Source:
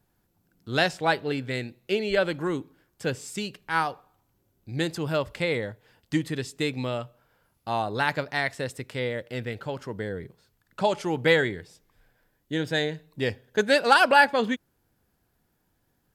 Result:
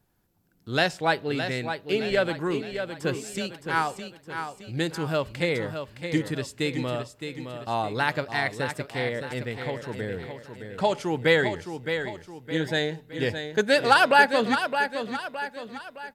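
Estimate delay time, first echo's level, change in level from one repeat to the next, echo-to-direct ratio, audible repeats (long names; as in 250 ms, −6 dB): 615 ms, −8.0 dB, −7.0 dB, −7.0 dB, 4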